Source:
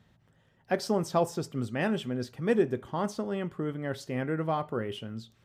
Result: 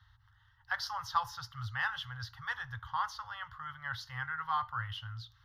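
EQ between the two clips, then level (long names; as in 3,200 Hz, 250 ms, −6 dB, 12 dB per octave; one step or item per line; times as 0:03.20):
inverse Chebyshev band-stop filter 180–440 Hz, stop band 50 dB
high-shelf EQ 5,100 Hz −9 dB
phaser with its sweep stopped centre 2,400 Hz, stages 6
+6.0 dB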